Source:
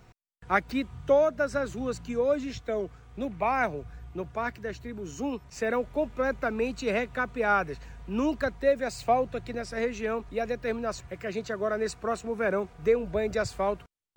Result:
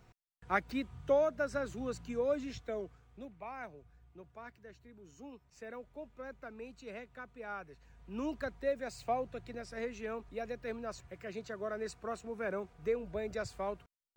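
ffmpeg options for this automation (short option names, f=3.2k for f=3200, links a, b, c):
-af "volume=1.5dB,afade=t=out:st=2.55:d=0.82:silence=0.266073,afade=t=in:st=7.78:d=0.5:silence=0.375837"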